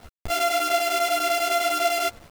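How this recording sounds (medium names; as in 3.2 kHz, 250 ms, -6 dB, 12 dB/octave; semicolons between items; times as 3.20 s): a buzz of ramps at a fixed pitch in blocks of 64 samples; chopped level 10 Hz, depth 65%, duty 80%; a quantiser's noise floor 8-bit, dither none; a shimmering, thickened sound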